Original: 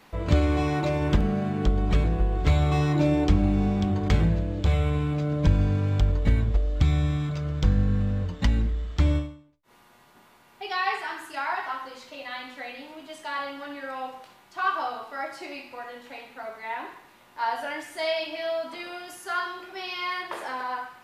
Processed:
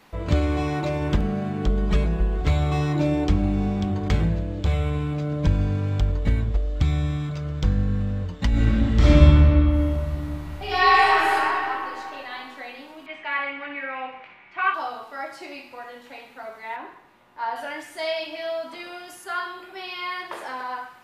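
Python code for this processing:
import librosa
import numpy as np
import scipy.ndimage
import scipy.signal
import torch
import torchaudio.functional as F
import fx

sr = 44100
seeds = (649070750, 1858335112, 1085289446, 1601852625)

y = fx.comb(x, sr, ms=4.8, depth=0.65, at=(1.69, 2.41))
y = fx.reverb_throw(y, sr, start_s=8.5, length_s=2.84, rt60_s=2.9, drr_db=-11.5)
y = fx.lowpass_res(y, sr, hz=2300.0, q=6.3, at=(13.06, 14.74))
y = fx.high_shelf(y, sr, hz=3200.0, db=-11.0, at=(16.76, 17.56))
y = fx.peak_eq(y, sr, hz=5900.0, db=-10.5, octaves=0.26, at=(19.24, 20.19))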